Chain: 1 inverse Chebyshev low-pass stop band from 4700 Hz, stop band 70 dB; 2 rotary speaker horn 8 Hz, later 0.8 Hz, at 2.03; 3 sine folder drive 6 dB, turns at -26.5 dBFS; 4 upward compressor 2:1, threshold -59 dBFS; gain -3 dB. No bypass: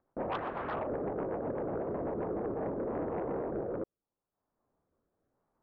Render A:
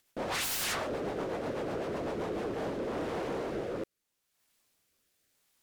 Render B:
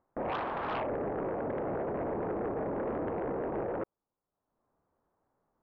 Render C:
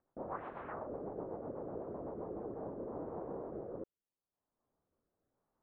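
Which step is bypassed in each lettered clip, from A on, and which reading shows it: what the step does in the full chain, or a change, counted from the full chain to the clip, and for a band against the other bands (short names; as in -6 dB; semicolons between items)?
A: 1, 2 kHz band +8.5 dB; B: 2, 2 kHz band +3.0 dB; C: 3, distortion -14 dB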